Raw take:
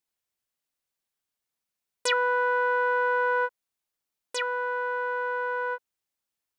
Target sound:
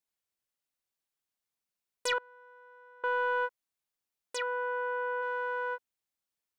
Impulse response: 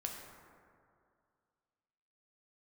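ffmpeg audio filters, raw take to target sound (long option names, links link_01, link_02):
-filter_complex "[0:a]asettb=1/sr,asplit=3[link_01][link_02][link_03];[link_01]atrim=end=2.184[link_04];[link_02]atrim=start=2.18:end=3.04,asetpts=PTS-STARTPTS,afade=type=in:duration=0.004:curve=qsin,afade=type=out:start_time=0.856:duration=0.004:curve=qsin,agate=range=-27dB:threshold=-20dB:ratio=16:detection=peak[link_05];[link_03]atrim=start=3.036[link_06];[link_04][link_05]acrossfade=duration=0.004:curve1=hsin:curve2=qsin[link_07];[link_07][link_06]acrossfade=duration=0.004:curve1=qsin:curve2=hsin,asplit=3[link_08][link_09][link_10];[link_08]afade=type=out:start_time=4.37:duration=0.02[link_11];[link_09]aemphasis=mode=reproduction:type=bsi,afade=type=in:start_time=4.37:duration=0.02,afade=type=out:start_time=5.21:duration=0.02[link_12];[link_10]afade=type=in:start_time=5.21:duration=0.02[link_13];[link_11][link_12][link_13]amix=inputs=3:normalize=0,asoftclip=type=tanh:threshold=-16.5dB,volume=-4dB"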